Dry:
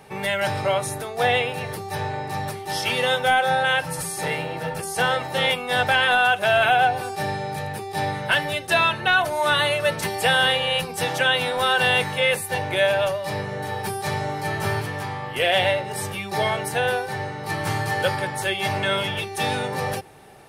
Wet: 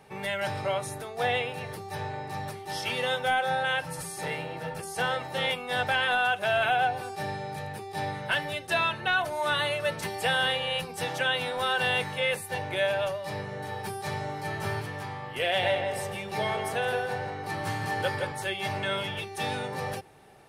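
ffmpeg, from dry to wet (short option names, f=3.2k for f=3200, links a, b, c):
-filter_complex "[0:a]asettb=1/sr,asplit=3[a][b][c];[a]atrim=end=15.464[d];[b]atrim=start=15.46:end=18.32,asetpts=PTS-STARTPTS,afade=t=in:d=0.004:c=qsin,afade=t=out:st=2.856:d=0.004:c=qsin,asplit=2[e][f];[f]adelay=166,lowpass=f=2.4k:p=1,volume=-4.5dB,asplit=2[g][h];[h]adelay=166,lowpass=f=2.4k:p=1,volume=0.47,asplit=2[i][j];[j]adelay=166,lowpass=f=2.4k:p=1,volume=0.47,asplit=2[k][l];[l]adelay=166,lowpass=f=2.4k:p=1,volume=0.47,asplit=2[m][n];[n]adelay=166,lowpass=f=2.4k:p=1,volume=0.47,asplit=2[o][p];[p]adelay=166,lowpass=f=2.4k:p=1,volume=0.47[q];[e][g][i][k][m][o][q]amix=inputs=7:normalize=0,atrim=end_sample=126126[r];[c]atrim=start=18.316[s];[d][r]acrossfade=d=0.004:c1=hsin:c2=qsin[t];[t][s]acrossfade=d=0.004:c1=qsin:c2=hsin,highshelf=f=9.4k:g=-4,volume=-7dB"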